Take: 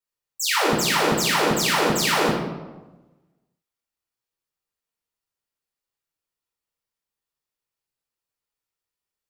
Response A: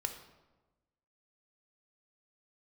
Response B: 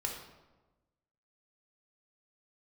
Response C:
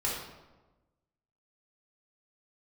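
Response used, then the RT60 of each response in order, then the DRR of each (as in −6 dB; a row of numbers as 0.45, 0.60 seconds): C; 1.2, 1.2, 1.2 seconds; 5.0, −0.5, −6.5 decibels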